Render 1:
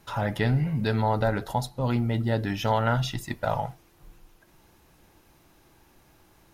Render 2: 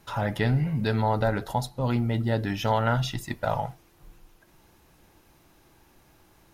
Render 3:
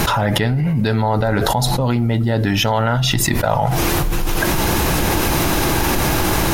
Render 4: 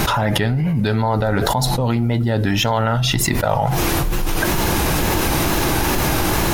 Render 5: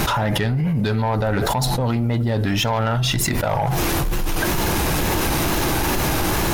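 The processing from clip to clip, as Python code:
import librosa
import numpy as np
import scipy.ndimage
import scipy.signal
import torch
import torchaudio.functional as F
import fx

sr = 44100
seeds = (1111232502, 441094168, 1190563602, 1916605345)

y1 = x
y2 = fx.env_flatten(y1, sr, amount_pct=100)
y2 = F.gain(torch.from_numpy(y2), 3.5).numpy()
y3 = fx.wow_flutter(y2, sr, seeds[0], rate_hz=2.1, depth_cents=60.0)
y3 = F.gain(torch.from_numpy(y3), -1.0).numpy()
y4 = 10.0 ** (-13.5 / 20.0) * np.tanh(y3 / 10.0 ** (-13.5 / 20.0))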